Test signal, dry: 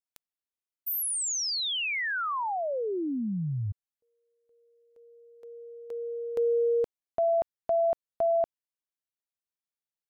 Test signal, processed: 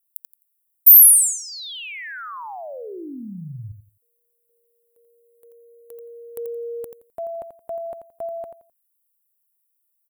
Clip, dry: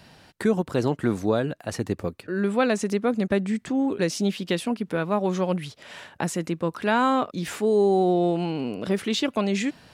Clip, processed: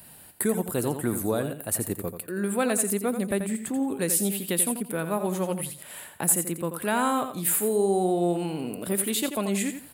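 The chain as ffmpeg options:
-af "aecho=1:1:86|172|258:0.355|0.0887|0.0222,aexciter=amount=14.4:drive=7.8:freq=8500,volume=0.631"

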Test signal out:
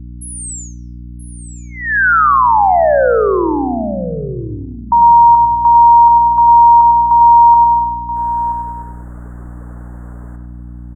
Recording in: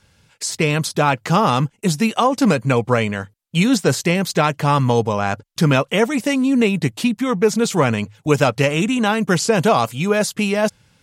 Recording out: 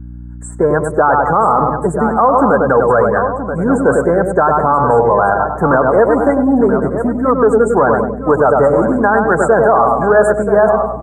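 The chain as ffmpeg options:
-filter_complex "[0:a]asoftclip=type=tanh:threshold=0.473,asplit=2[s0][s1];[s1]adelay=100,lowpass=f=1900:p=1,volume=0.531,asplit=2[s2][s3];[s3]adelay=100,lowpass=f=1900:p=1,volume=0.51,asplit=2[s4][s5];[s5]adelay=100,lowpass=f=1900:p=1,volume=0.51,asplit=2[s6][s7];[s7]adelay=100,lowpass=f=1900:p=1,volume=0.51,asplit=2[s8][s9];[s9]adelay=100,lowpass=f=1900:p=1,volume=0.51,asplit=2[s10][s11];[s11]adelay=100,lowpass=f=1900:p=1,volume=0.51[s12];[s2][s4][s6][s8][s10][s12]amix=inputs=6:normalize=0[s13];[s0][s13]amix=inputs=2:normalize=0,acontrast=84,asuperstop=centerf=3700:order=12:qfactor=0.61,afftdn=nr=14:nf=-21,acrossover=split=360 5600:gain=0.141 1 0.0631[s14][s15][s16];[s14][s15][s16]amix=inputs=3:normalize=0,asplit=2[s17][s18];[s18]aecho=0:1:979:0.251[s19];[s17][s19]amix=inputs=2:normalize=0,aeval=exprs='val(0)+0.0178*(sin(2*PI*60*n/s)+sin(2*PI*2*60*n/s)/2+sin(2*PI*3*60*n/s)/3+sin(2*PI*4*60*n/s)/4+sin(2*PI*5*60*n/s)/5)':c=same,alimiter=level_in=2.37:limit=0.891:release=50:level=0:latency=1,adynamicequalizer=threshold=0.0708:dfrequency=2400:dqfactor=0.7:tfrequency=2400:tqfactor=0.7:attack=5:release=100:ratio=0.375:range=2:mode=boostabove:tftype=highshelf,volume=0.891"

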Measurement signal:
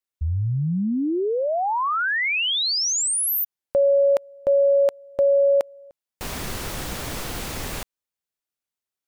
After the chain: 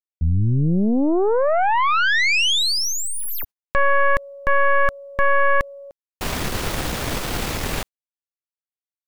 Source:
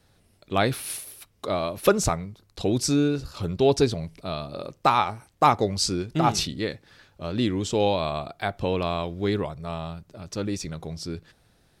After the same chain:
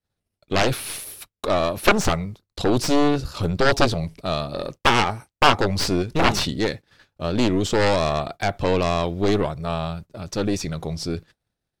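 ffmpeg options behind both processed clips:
-filter_complex "[0:a]agate=range=0.0224:threshold=0.00447:ratio=3:release=87:detection=peak,aeval=exprs='0.631*(cos(1*acos(clip(val(0)/0.631,-1,1)))-cos(1*PI/2))+0.112*(cos(6*acos(clip(val(0)/0.631,-1,1)))-cos(6*PI/2))+0.282*(cos(7*acos(clip(val(0)/0.631,-1,1)))-cos(7*PI/2))+0.2*(cos(8*acos(clip(val(0)/0.631,-1,1)))-cos(8*PI/2))':c=same,acrossover=split=4800[s0][s1];[s1]acompressor=threshold=0.0316:ratio=4:attack=1:release=60[s2];[s0][s2]amix=inputs=2:normalize=0"

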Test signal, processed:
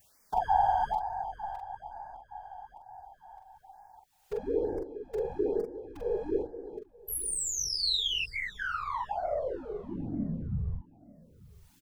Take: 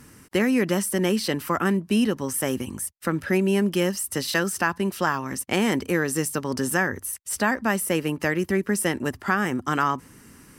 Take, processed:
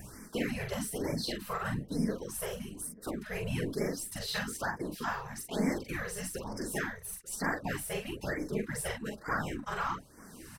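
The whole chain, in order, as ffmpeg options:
-filter_complex "[0:a]aeval=exprs='if(lt(val(0),0),0.708*val(0),val(0))':c=same,adynamicequalizer=threshold=0.00316:dfrequency=4000:dqfactor=3.7:tfrequency=4000:tqfactor=3.7:attack=5:release=100:ratio=0.375:range=3.5:mode=boostabove:tftype=bell,acompressor=mode=upward:threshold=0.0447:ratio=2.5,afftfilt=real='hypot(re,im)*cos(2*PI*random(0))':imag='hypot(re,im)*sin(2*PI*random(1))':win_size=512:overlap=0.75,flanger=delay=1.1:depth=3.8:regen=14:speed=1.7:shape=sinusoidal,asplit=2[s0][s1];[s1]adelay=43,volume=0.631[s2];[s0][s2]amix=inputs=2:normalize=0,asplit=2[s3][s4];[s4]adelay=889,lowpass=f=980:p=1,volume=0.0794,asplit=2[s5][s6];[s6]adelay=889,lowpass=f=980:p=1,volume=0.36,asplit=2[s7][s8];[s8]adelay=889,lowpass=f=980:p=1,volume=0.36[s9];[s3][s5][s7][s9]amix=inputs=4:normalize=0,afftfilt=real='re*(1-between(b*sr/1024,250*pow(3400/250,0.5+0.5*sin(2*PI*1.1*pts/sr))/1.41,250*pow(3400/250,0.5+0.5*sin(2*PI*1.1*pts/sr))*1.41))':imag='im*(1-between(b*sr/1024,250*pow(3400/250,0.5+0.5*sin(2*PI*1.1*pts/sr))/1.41,250*pow(3400/250,0.5+0.5*sin(2*PI*1.1*pts/sr))*1.41))':win_size=1024:overlap=0.75,volume=0.841"

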